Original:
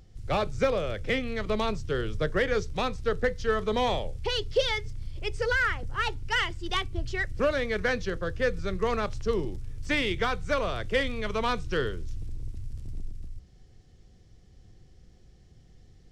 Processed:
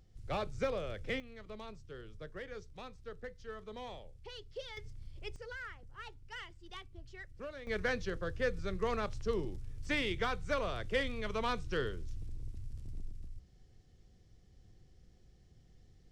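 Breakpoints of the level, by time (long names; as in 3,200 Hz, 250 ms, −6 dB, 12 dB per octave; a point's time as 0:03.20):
−9.5 dB
from 0:01.20 −19.5 dB
from 0:04.77 −12 dB
from 0:05.36 −19.5 dB
from 0:07.67 −7 dB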